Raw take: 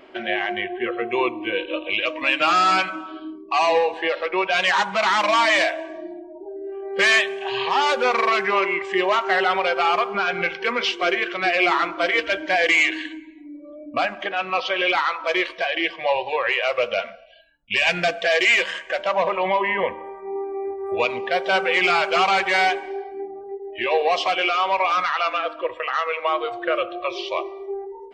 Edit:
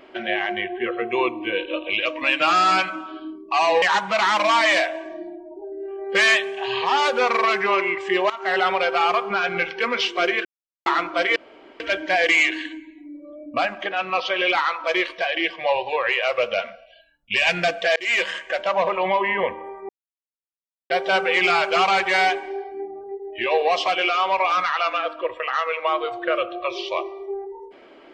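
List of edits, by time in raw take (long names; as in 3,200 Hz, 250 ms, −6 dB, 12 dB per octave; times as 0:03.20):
0:03.82–0:04.66: remove
0:09.14–0:09.43: fade in, from −18 dB
0:11.29–0:11.70: silence
0:12.20: splice in room tone 0.44 s
0:18.36–0:18.62: fade in
0:20.29–0:21.30: silence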